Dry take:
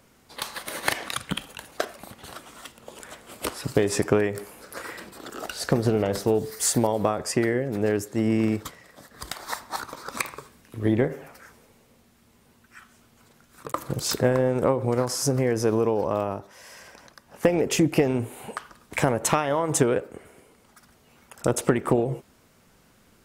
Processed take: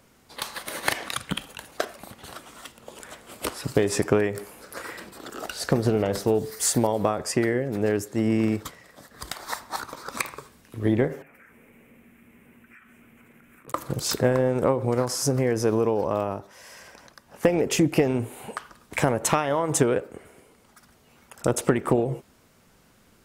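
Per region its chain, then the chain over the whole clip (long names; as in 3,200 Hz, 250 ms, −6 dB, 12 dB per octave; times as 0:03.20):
0:11.22–0:13.68: downward compressor 10 to 1, threshold −54 dBFS + drawn EQ curve 100 Hz 0 dB, 240 Hz +9 dB, 880 Hz −1 dB, 1,300 Hz +3 dB, 2,400 Hz +12 dB, 4,400 Hz −19 dB, 8,000 Hz −5 dB, 13,000 Hz +2 dB
whole clip: no processing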